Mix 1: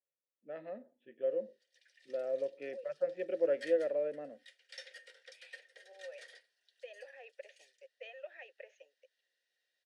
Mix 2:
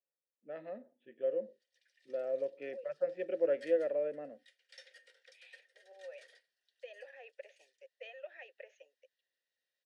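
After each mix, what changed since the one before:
background −6.5 dB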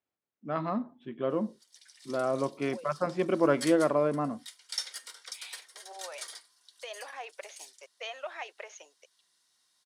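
master: remove formant filter e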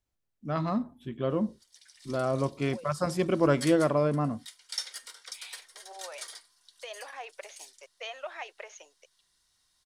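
first voice: remove band-pass filter 230–2,800 Hz

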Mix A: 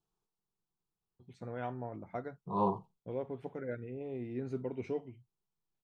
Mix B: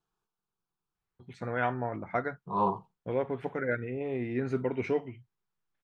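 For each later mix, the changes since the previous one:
first voice +6.5 dB
master: add parametric band 1,700 Hz +10.5 dB 1.5 octaves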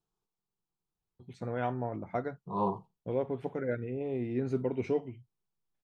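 master: add parametric band 1,700 Hz −10.5 dB 1.5 octaves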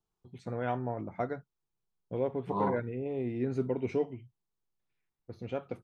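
first voice: entry −0.95 s

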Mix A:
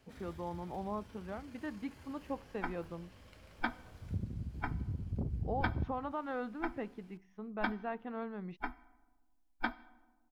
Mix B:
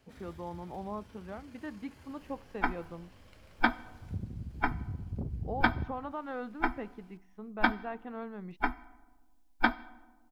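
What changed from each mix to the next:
second sound +9.5 dB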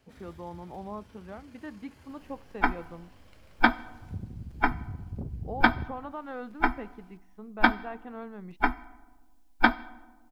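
second sound +5.5 dB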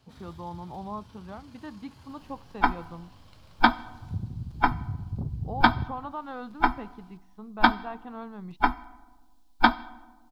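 master: add octave-band graphic EQ 125/500/1,000/2,000/4,000 Hz +8/−4/+7/−6/+8 dB

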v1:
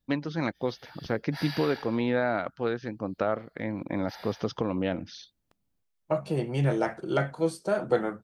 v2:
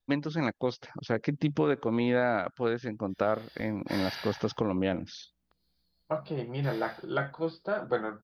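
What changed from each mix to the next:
second voice: add Chebyshev low-pass with heavy ripple 5,000 Hz, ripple 6 dB
background: entry +2.55 s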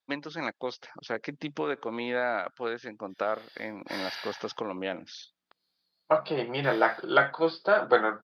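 second voice +10.0 dB
master: add meter weighting curve A

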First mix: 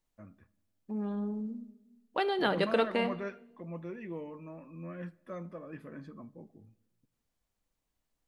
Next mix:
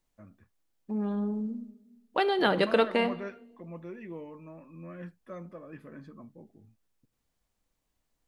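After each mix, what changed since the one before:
first voice: send off
second voice +4.0 dB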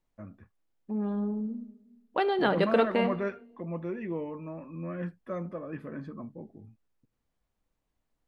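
first voice +7.5 dB
master: add high-shelf EQ 3,300 Hz −10 dB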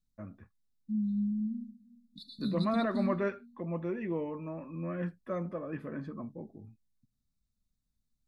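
second voice: add linear-phase brick-wall band-stop 270–3,500 Hz

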